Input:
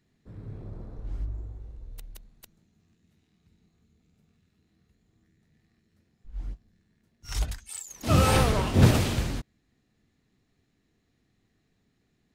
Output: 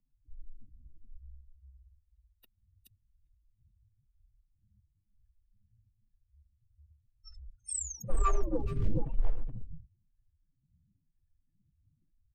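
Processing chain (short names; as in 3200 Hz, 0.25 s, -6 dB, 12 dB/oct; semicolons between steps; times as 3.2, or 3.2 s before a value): spectral contrast raised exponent 3.2; HPF 91 Hz 24 dB/oct; bell 930 Hz -4 dB 1.8 oct; in parallel at -8 dB: wavefolder -25.5 dBFS; on the sum: frequency shift -120 Hz; on a send: echo 0.424 s -5 dB; on the sum: photocell phaser 1 Hz; gain +1.5 dB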